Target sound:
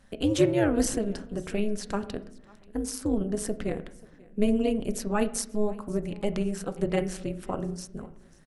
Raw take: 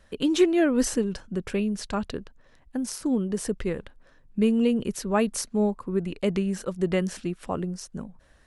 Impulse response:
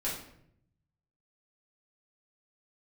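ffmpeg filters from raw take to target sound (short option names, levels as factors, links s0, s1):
-filter_complex "[0:a]equalizer=f=10000:w=0.68:g=4.5,aecho=1:1:536|1072:0.0631|0.0227,tremolo=f=210:d=0.889,asplit=2[s0][s1];[1:a]atrim=start_sample=2205,lowpass=2500[s2];[s1][s2]afir=irnorm=-1:irlink=0,volume=0.224[s3];[s0][s3]amix=inputs=2:normalize=0"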